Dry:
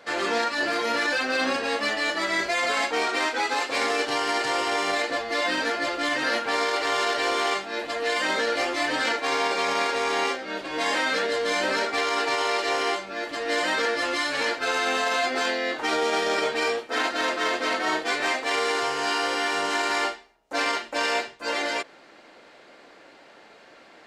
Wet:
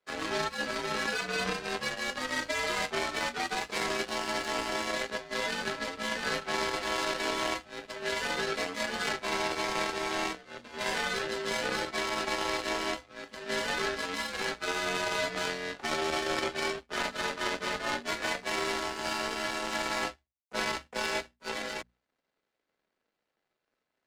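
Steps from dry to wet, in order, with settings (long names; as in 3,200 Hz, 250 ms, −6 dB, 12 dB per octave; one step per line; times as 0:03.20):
power curve on the samples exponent 2
frequency shifter −72 Hz
mains-hum notches 60/120/180/240 Hz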